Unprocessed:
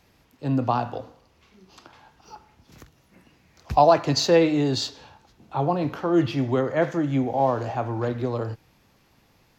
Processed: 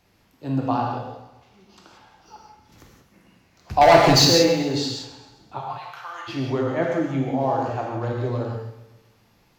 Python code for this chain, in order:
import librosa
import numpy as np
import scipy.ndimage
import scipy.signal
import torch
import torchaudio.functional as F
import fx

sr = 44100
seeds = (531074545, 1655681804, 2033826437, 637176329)

y = fx.leveller(x, sr, passes=3, at=(3.81, 4.25))
y = fx.highpass(y, sr, hz=960.0, slope=24, at=(5.58, 6.27), fade=0.02)
y = fx.echo_feedback(y, sr, ms=132, feedback_pct=48, wet_db=-14)
y = fx.rev_gated(y, sr, seeds[0], gate_ms=210, shape='flat', drr_db=-1.0)
y = F.gain(torch.from_numpy(y), -3.5).numpy()